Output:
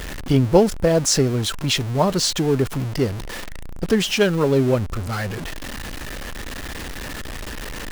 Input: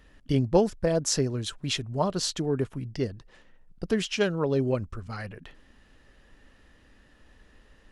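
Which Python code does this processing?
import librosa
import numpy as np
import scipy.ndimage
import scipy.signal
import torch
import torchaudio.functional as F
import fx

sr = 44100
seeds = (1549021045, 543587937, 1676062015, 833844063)

y = x + 0.5 * 10.0 ** (-32.0 / 20.0) * np.sign(x)
y = F.gain(torch.from_numpy(y), 6.5).numpy()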